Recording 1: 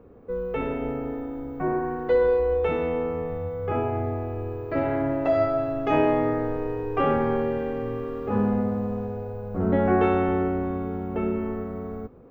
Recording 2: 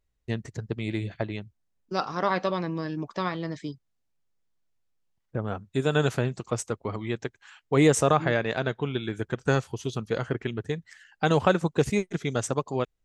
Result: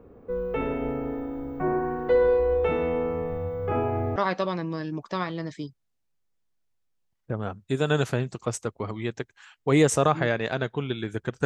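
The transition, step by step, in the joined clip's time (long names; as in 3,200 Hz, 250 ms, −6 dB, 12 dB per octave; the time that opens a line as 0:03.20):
recording 1
0:04.16: continue with recording 2 from 0:02.21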